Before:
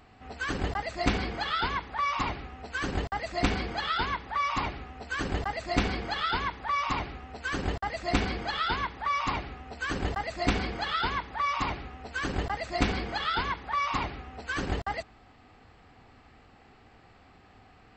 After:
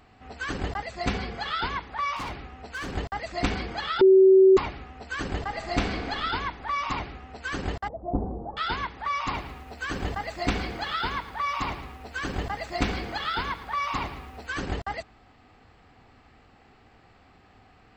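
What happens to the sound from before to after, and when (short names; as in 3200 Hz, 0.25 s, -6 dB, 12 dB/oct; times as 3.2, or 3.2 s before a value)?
0.84–1.46 notch comb 310 Hz
2.16–2.96 overloaded stage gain 30.5 dB
4.01–4.57 bleep 381 Hz -11.5 dBFS
5.36–6.05 reverb throw, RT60 2.4 s, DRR 6 dB
7.88–8.57 steep low-pass 850 Hz
9.23–14.47 lo-fi delay 0.11 s, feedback 55%, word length 8-bit, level -15 dB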